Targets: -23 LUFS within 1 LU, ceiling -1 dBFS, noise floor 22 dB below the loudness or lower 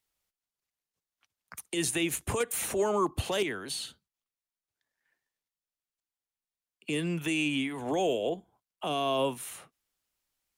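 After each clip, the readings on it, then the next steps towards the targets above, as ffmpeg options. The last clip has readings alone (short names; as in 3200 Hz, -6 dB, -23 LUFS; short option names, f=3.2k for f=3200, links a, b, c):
loudness -31.0 LUFS; peak -17.0 dBFS; loudness target -23.0 LUFS
-> -af "volume=8dB"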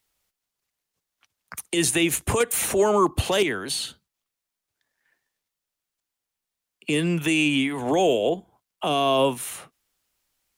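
loudness -23.0 LUFS; peak -9.0 dBFS; noise floor -86 dBFS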